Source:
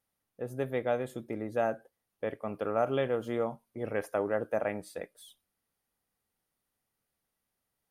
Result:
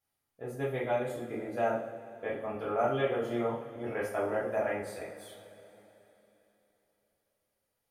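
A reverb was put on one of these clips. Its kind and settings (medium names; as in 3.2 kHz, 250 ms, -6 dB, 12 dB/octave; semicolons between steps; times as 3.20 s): two-slope reverb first 0.47 s, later 3.6 s, from -19 dB, DRR -8.5 dB; trim -8 dB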